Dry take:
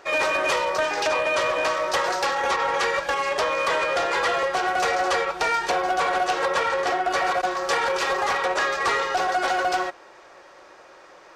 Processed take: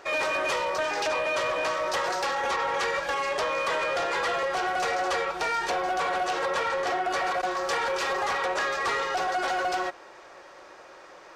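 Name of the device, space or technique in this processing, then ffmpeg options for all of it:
soft clipper into limiter: -af "asoftclip=type=tanh:threshold=-16dB,alimiter=limit=-21.5dB:level=0:latency=1:release=49"

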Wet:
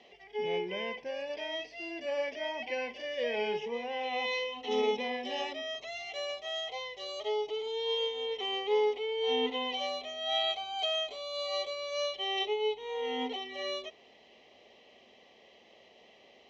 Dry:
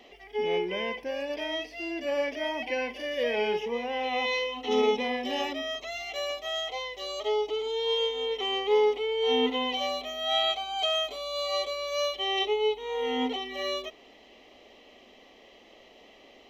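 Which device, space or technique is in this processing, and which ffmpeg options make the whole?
car door speaker: -af "highpass=87,equalizer=f=150:t=q:w=4:g=5,equalizer=f=290:t=q:w=4:g=-9,equalizer=f=1.3k:t=q:w=4:g=-6,lowpass=f=6.7k:w=0.5412,lowpass=f=6.7k:w=1.3066,volume=-4dB"

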